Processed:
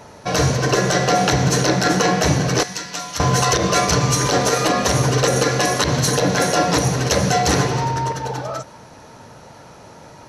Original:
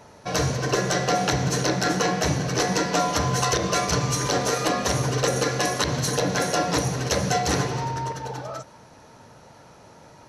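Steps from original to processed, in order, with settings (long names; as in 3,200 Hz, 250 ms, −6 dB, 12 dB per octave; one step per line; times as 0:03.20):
0:02.63–0:03.20: guitar amp tone stack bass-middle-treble 5-5-5
boost into a limiter +12 dB
level −5 dB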